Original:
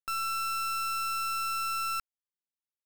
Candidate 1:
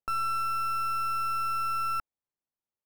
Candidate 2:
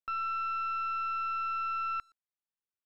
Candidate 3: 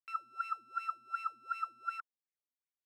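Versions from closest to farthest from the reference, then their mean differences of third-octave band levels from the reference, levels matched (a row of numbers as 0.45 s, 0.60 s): 1, 2, 3; 6.5 dB, 9.5 dB, 13.5 dB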